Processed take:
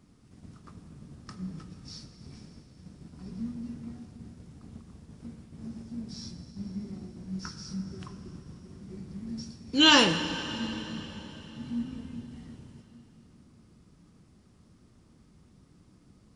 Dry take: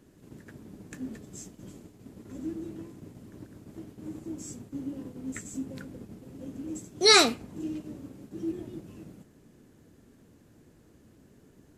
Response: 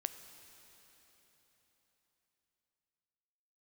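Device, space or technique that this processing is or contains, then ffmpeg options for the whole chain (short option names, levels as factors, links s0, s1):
slowed and reverbed: -filter_complex "[0:a]asetrate=31752,aresample=44100[s0];[1:a]atrim=start_sample=2205[s1];[s0][s1]afir=irnorm=-1:irlink=0"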